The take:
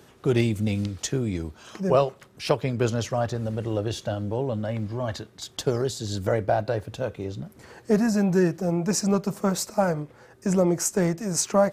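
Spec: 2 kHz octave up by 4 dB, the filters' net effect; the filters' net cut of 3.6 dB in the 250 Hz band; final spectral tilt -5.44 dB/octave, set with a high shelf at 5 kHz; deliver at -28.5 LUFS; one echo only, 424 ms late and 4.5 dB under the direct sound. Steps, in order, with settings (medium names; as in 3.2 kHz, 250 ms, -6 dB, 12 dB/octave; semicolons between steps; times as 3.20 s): peaking EQ 250 Hz -5.5 dB; peaking EQ 2 kHz +6.5 dB; treble shelf 5 kHz -7 dB; delay 424 ms -4.5 dB; trim -2 dB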